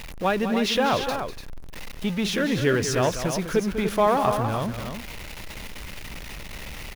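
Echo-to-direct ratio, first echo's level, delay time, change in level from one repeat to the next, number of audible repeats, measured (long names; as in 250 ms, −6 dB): −6.0 dB, −10.0 dB, 197 ms, repeats not evenly spaced, 2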